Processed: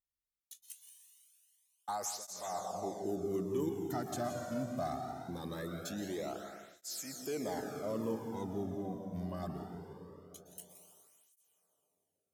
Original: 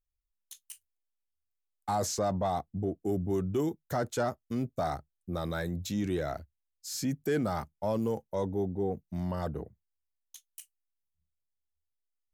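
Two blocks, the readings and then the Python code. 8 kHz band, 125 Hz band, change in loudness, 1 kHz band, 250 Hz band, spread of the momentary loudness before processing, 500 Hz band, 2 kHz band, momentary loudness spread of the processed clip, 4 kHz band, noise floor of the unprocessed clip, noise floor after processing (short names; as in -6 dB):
-3.0 dB, -9.5 dB, -6.5 dB, -6.0 dB, -6.0 dB, 18 LU, -6.5 dB, -7.5 dB, 15 LU, -4.5 dB, -84 dBFS, under -85 dBFS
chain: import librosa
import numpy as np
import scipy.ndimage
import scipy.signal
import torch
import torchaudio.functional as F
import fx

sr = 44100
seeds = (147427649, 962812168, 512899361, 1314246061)

y = fx.high_shelf(x, sr, hz=5300.0, db=6.5)
y = y + 10.0 ** (-13.0 / 20.0) * np.pad(y, (int(171 * sr / 1000.0), 0))[:len(y)]
y = fx.rev_plate(y, sr, seeds[0], rt60_s=3.4, hf_ratio=0.8, predelay_ms=105, drr_db=3.5)
y = fx.flanger_cancel(y, sr, hz=0.22, depth_ms=2.5)
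y = y * 10.0 ** (-5.5 / 20.0)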